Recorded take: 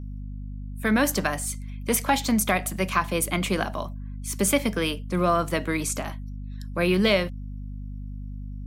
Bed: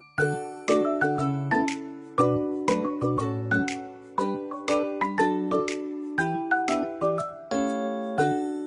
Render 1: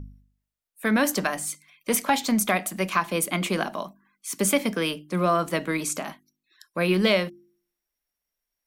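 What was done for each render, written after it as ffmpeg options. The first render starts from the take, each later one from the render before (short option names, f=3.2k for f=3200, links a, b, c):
-af "bandreject=f=50:t=h:w=4,bandreject=f=100:t=h:w=4,bandreject=f=150:t=h:w=4,bandreject=f=200:t=h:w=4,bandreject=f=250:t=h:w=4,bandreject=f=300:t=h:w=4,bandreject=f=350:t=h:w=4"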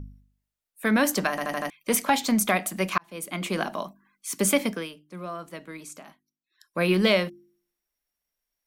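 -filter_complex "[0:a]asplit=9[a][b][c][d][e][f][g][h][i];[a]atrim=end=1.382[j];[b]atrim=start=1.298:end=1.382[k];[c]atrim=start=1.298:end=1.382[l];[d]atrim=start=1.298:end=1.382[m];[e]atrim=start=1.298:end=1.382[n];[f]atrim=start=1.698:end=2.98,asetpts=PTS-STARTPTS,afade=t=out:st=1.278:d=0.004:c=hsin[o];[g]atrim=start=2.98:end=4.89,asetpts=PTS-STARTPTS,afade=t=in:d=0.72,afade=t=out:st=1.65:d=0.26:silence=0.211349[p];[h]atrim=start=4.89:end=6.52,asetpts=PTS-STARTPTS,volume=-13.5dB[q];[i]atrim=start=6.52,asetpts=PTS-STARTPTS,afade=t=in:d=0.26:silence=0.211349[r];[j][k]acrossfade=d=0.004:c1=hsin:c2=hsin[s];[s][l]acrossfade=d=0.004:c1=hsin:c2=hsin[t];[t][m]acrossfade=d=0.004:c1=hsin:c2=hsin[u];[u][n]acrossfade=d=0.004:c1=hsin:c2=hsin[v];[o][p][q][r]concat=n=4:v=0:a=1[w];[v][w]acrossfade=d=0.004:c1=hsin:c2=hsin"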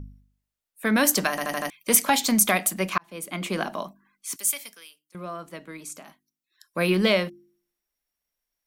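-filter_complex "[0:a]asettb=1/sr,asplit=3[a][b][c];[a]atrim=end=0.964[d];[b]atrim=start=0.96:end=2.74,asetpts=PTS-STARTPTS,afade=t=in:d=0.004:c=qsin,afade=t=out:st=1.776:d=0.004:c=qsin,highshelf=f=3.8k:g=8.5[e];[c]atrim=start=2.736[f];[d][e]acrossfade=d=0.004:c1=hsin:c2=qsin[g];[g][f]acrossfade=d=0.004:c1=qsin:c2=hsin,asettb=1/sr,asplit=3[h][i][j];[h]atrim=end=4.364[k];[i]atrim=start=4.36:end=5.15,asetpts=PTS-STARTPTS,afade=t=in:d=0.004:c=qsin,afade=t=out:st=0.786:d=0.004:c=qsin,aderivative[l];[j]atrim=start=5.146[m];[k][l]acrossfade=d=0.004:c1=hsin:c2=qsin[n];[n][m]acrossfade=d=0.004:c1=qsin:c2=hsin,asettb=1/sr,asplit=3[o][p][q];[o]atrim=end=5.854[r];[p]atrim=start=5.85:end=6.9,asetpts=PTS-STARTPTS,afade=t=in:d=0.004:c=qsin,afade=t=out:st=1.046:d=0.004:c=qsin,highshelf=f=5k:g=6[s];[q]atrim=start=6.896[t];[r][s]acrossfade=d=0.004:c1=hsin:c2=qsin[u];[u][t]acrossfade=d=0.004:c1=qsin:c2=hsin"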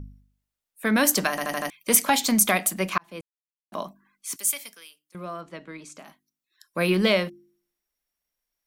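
-filter_complex "[0:a]asettb=1/sr,asplit=3[a][b][c];[a]atrim=end=5.414[d];[b]atrim=start=5.41:end=5.99,asetpts=PTS-STARTPTS,afade=t=in:d=0.004:c=qsin,afade=t=out:st=0.576:d=0.004:c=qsin,lowpass=5.6k[e];[c]atrim=start=5.986[f];[d][e]acrossfade=d=0.004:c1=hsin:c2=qsin[g];[g][f]acrossfade=d=0.004:c1=qsin:c2=hsin,asplit=3[h][i][j];[h]atrim=end=3.21,asetpts=PTS-STARTPTS,afade=t=out:st=3.206:d=0.004:c=hsin[k];[i]atrim=start=3.21:end=3.72,asetpts=PTS-STARTPTS,volume=0[l];[j]atrim=start=3.72,asetpts=PTS-STARTPTS,afade=t=in:d=0.004:c=hsin[m];[k][l][m]concat=n=3:v=0:a=1"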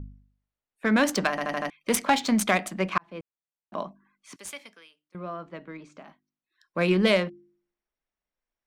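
-af "adynamicsmooth=sensitivity=1:basefreq=2.8k"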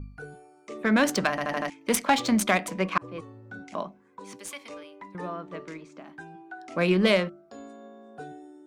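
-filter_complex "[1:a]volume=-18dB[a];[0:a][a]amix=inputs=2:normalize=0"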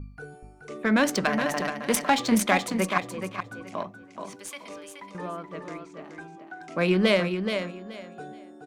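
-af "aecho=1:1:426|852|1278:0.447|0.0983|0.0216"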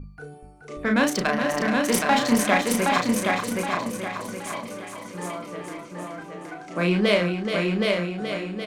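-filter_complex "[0:a]asplit=2[a][b];[b]adelay=34,volume=-4.5dB[c];[a][c]amix=inputs=2:normalize=0,asplit=2[d][e];[e]aecho=0:1:770|1540|2310|3080|3850:0.708|0.262|0.0969|0.0359|0.0133[f];[d][f]amix=inputs=2:normalize=0"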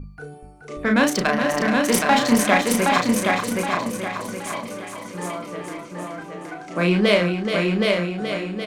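-af "volume=3dB"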